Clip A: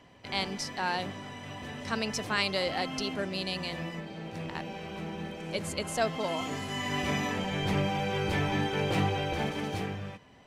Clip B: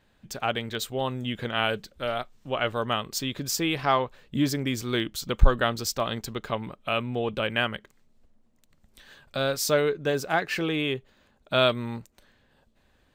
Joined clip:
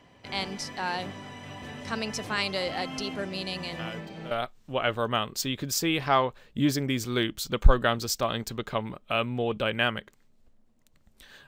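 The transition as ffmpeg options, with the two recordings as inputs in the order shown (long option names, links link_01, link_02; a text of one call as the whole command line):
ffmpeg -i cue0.wav -i cue1.wav -filter_complex "[1:a]asplit=2[link_01][link_02];[0:a]apad=whole_dur=11.47,atrim=end=11.47,atrim=end=4.312[link_03];[link_02]atrim=start=2.078:end=9.24[link_04];[link_01]atrim=start=1.56:end=2.08,asetpts=PTS-STARTPTS,volume=-14dB,afade=type=in:duration=0.004:curve=hsin,afade=type=out:start_time=0.516:duration=0.004:curve=hsin,adelay=3790[link_05];[link_03][link_04]acrossfade=duration=0.004:curve1=hsin:curve2=hsin[link_06];[link_06][link_05]amix=inputs=2:normalize=0" out.wav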